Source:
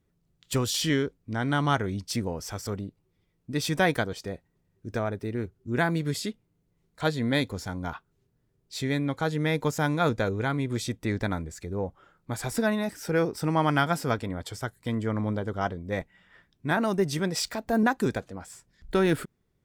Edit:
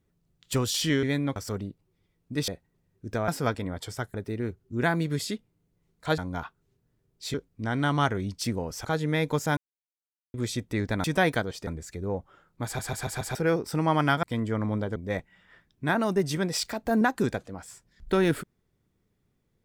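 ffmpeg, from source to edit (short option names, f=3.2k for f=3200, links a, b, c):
-filter_complex "[0:a]asplit=20[a][b][c][d][e][f][g][h][i][j][k][l][m][n][o][p][q][r][s][t];[a]atrim=end=1.032[u];[b]atrim=start=8.838:end=9.172[v];[c]atrim=start=2.538:end=3.662[w];[d]atrim=start=4.288:end=5.092[x];[e]atrim=start=13.918:end=14.782[y];[f]atrim=start=5.088:end=7.132[z];[g]atrim=start=7.678:end=8.842[aa];[h]atrim=start=1.028:end=2.542[ab];[i]atrim=start=9.168:end=9.89,asetpts=PTS-STARTPTS,afade=t=out:st=0.718:d=0.004:c=hsin[ac];[j]atrim=start=9.89:end=10.66,asetpts=PTS-STARTPTS,volume=0[ad];[k]atrim=start=10.66:end=11.362,asetpts=PTS-STARTPTS,afade=t=in:d=0.004:c=hsin[ae];[l]atrim=start=3.658:end=4.292[af];[m]atrim=start=11.358:end=12.482[ag];[n]atrim=start=12.338:end=12.482[ah];[o]atrim=start=12.338:end=12.482[ai];[p]atrim=start=12.338:end=12.482[aj];[q]atrim=start=12.338:end=12.482[ak];[r]atrim=start=13.038:end=13.922[al];[s]atrim=start=14.778:end=15.512[am];[t]atrim=start=15.778[an];[u][v]acrossfade=d=0.004:c1=hsin:c2=hsin[ao];[ao][w]acrossfade=d=0.004:c1=hsin:c2=hsin[ap];[ap][x]acrossfade=d=0.004:c1=hsin:c2=hsin[aq];[aq][y]acrossfade=d=0.004:c1=hsin:c2=hsin[ar];[ar][z]acrossfade=d=0.004:c1=hsin:c2=hsin[as];[as][aa]acrossfade=d=0.004:c1=hsin:c2=hsin[at];[at][ab]acrossfade=d=0.004:c1=hsin:c2=hsin[au];[ac][ad][ae]concat=n=3:v=0:a=1[av];[au][av]acrossfade=d=0.004:c1=hsin:c2=hsin[aw];[aw][af]acrossfade=d=0.004:c1=hsin:c2=hsin[ax];[ax][ag]acrossfade=d=0.004:c1=hsin:c2=hsin[ay];[ay][ah]acrossfade=d=0.004:c1=hsin:c2=hsin[az];[az][ai]acrossfade=d=0.004:c1=hsin:c2=hsin[ba];[ba][aj]acrossfade=d=0.004:c1=hsin:c2=hsin[bb];[bb][ak]acrossfade=d=0.004:c1=hsin:c2=hsin[bc];[bc][al]acrossfade=d=0.004:c1=hsin:c2=hsin[bd];[bd][am]acrossfade=d=0.004:c1=hsin:c2=hsin[be];[be][an]acrossfade=d=0.004:c1=hsin:c2=hsin"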